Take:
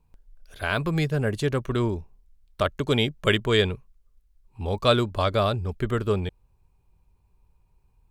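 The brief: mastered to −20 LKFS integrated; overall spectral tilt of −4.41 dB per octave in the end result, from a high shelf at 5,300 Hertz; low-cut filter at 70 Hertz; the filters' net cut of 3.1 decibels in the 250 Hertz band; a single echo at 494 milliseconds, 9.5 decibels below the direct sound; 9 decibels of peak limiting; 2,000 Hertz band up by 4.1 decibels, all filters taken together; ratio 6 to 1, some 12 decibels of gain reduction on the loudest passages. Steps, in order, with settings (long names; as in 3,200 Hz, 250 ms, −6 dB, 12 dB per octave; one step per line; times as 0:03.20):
high-pass filter 70 Hz
parametric band 250 Hz −4.5 dB
parametric band 2,000 Hz +4.5 dB
high-shelf EQ 5,300 Hz +6.5 dB
downward compressor 6 to 1, threshold −27 dBFS
brickwall limiter −22 dBFS
single-tap delay 494 ms −9.5 dB
level +15 dB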